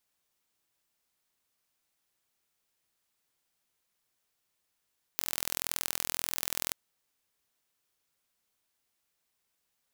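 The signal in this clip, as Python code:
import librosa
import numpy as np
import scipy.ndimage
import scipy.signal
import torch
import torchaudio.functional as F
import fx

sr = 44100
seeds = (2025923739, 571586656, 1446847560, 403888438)

y = fx.impulse_train(sr, length_s=1.53, per_s=41.9, accent_every=2, level_db=-2.5)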